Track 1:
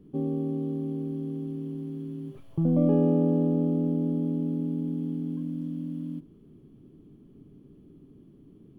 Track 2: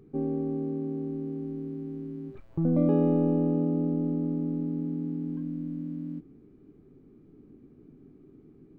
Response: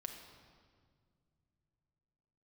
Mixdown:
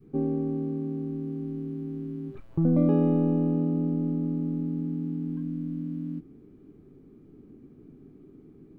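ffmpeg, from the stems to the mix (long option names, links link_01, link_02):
-filter_complex "[0:a]acompressor=threshold=-29dB:ratio=6,volume=-12.5dB[link_01];[1:a]volume=2.5dB[link_02];[link_01][link_02]amix=inputs=2:normalize=0,adynamicequalizer=threshold=0.0158:dfrequency=510:dqfactor=0.73:tfrequency=510:tqfactor=0.73:attack=5:release=100:ratio=0.375:range=3:mode=cutabove:tftype=bell"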